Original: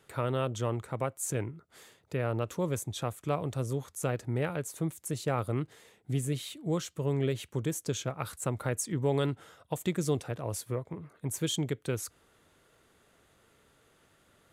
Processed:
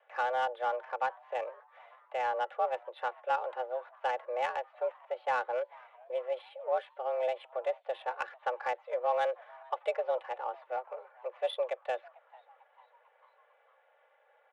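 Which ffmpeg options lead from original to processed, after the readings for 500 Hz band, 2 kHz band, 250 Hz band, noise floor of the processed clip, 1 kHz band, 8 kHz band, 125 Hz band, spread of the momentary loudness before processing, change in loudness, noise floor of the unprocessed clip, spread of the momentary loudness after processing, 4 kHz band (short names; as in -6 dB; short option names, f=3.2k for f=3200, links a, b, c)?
+1.0 dB, +3.5 dB, under -25 dB, -68 dBFS, +8.0 dB, under -25 dB, under -40 dB, 6 LU, -1.5 dB, -66 dBFS, 8 LU, -6.5 dB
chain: -filter_complex "[0:a]aecho=1:1:3.4:0.69,highpass=f=220:t=q:w=0.5412,highpass=f=220:t=q:w=1.307,lowpass=f=3k:t=q:w=0.5176,lowpass=f=3k:t=q:w=0.7071,lowpass=f=3k:t=q:w=1.932,afreqshift=250,asplit=5[a][b][c][d][e];[b]adelay=447,afreqshift=130,volume=-23dB[f];[c]adelay=894,afreqshift=260,volume=-27.6dB[g];[d]adelay=1341,afreqshift=390,volume=-32.2dB[h];[e]adelay=1788,afreqshift=520,volume=-36.7dB[i];[a][f][g][h][i]amix=inputs=5:normalize=0,acrossover=split=760[j][k];[k]adynamicsmooth=sensitivity=5:basefreq=2.2k[l];[j][l]amix=inputs=2:normalize=0"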